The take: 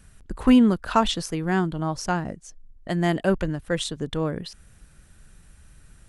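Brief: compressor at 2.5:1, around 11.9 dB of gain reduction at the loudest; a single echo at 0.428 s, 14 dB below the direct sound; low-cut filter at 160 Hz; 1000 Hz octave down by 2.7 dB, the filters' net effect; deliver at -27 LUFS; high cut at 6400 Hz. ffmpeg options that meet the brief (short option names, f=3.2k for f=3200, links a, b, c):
-af "highpass=160,lowpass=6.4k,equalizer=f=1k:t=o:g=-3.5,acompressor=threshold=-31dB:ratio=2.5,aecho=1:1:428:0.2,volume=6dB"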